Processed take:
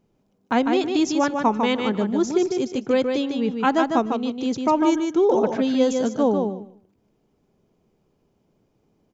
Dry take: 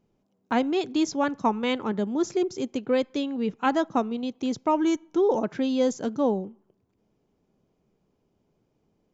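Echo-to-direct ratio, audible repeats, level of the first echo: -5.0 dB, 2, -5.0 dB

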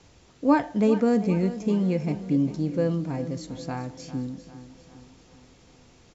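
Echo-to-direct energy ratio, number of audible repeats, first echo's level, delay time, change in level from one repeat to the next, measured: -12.5 dB, 4, -14.0 dB, 399 ms, -5.5 dB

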